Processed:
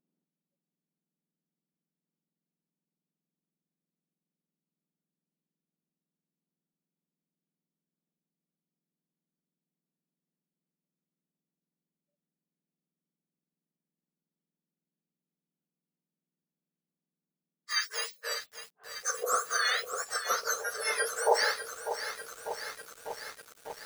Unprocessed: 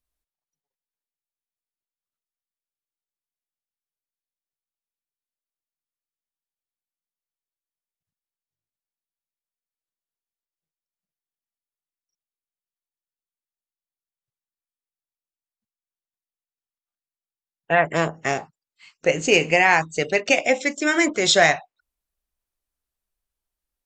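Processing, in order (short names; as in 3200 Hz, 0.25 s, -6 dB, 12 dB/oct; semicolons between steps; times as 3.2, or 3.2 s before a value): spectrum mirrored in octaves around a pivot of 1800 Hz; lo-fi delay 0.597 s, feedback 80%, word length 6-bit, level -9.5 dB; gain -8.5 dB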